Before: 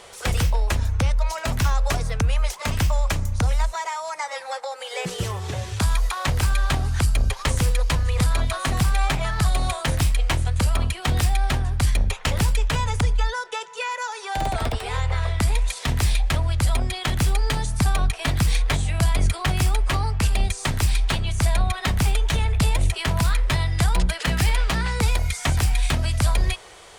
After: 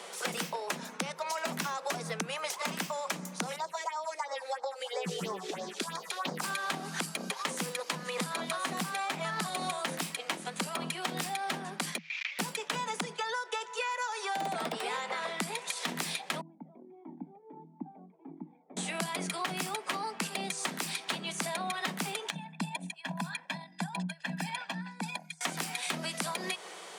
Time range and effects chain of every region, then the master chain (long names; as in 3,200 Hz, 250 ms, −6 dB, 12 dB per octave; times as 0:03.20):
0:03.56–0:06.44: high-shelf EQ 5,000 Hz −7.5 dB + all-pass phaser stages 4, 3 Hz, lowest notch 150–2,800 Hz
0:11.98–0:12.39: linear delta modulator 32 kbit/s, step −33.5 dBFS + downward compressor, threshold −33 dBFS + high-pass with resonance 2,300 Hz, resonance Q 6.4
0:16.41–0:18.77: formant resonators in series u + dynamic equaliser 820 Hz, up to −3 dB, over −50 dBFS, Q 0.82 + flanger whose copies keep moving one way falling 1.5 Hz
0:22.30–0:25.41: spectral envelope exaggerated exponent 1.5 + comb filter 1.2 ms, depth 92% + expander for the loud parts 2.5 to 1, over −29 dBFS
whole clip: Chebyshev high-pass filter 160 Hz, order 10; downward compressor, threshold −31 dBFS